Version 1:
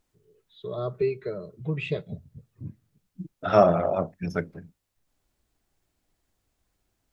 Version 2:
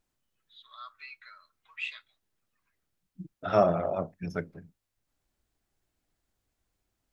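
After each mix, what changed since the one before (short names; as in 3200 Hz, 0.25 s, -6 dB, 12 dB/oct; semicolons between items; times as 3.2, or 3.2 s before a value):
first voice: add steep high-pass 1200 Hz 36 dB/oct; second voice -5.0 dB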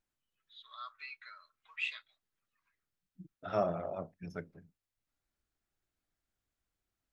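first voice: send -7.5 dB; second voice -9.0 dB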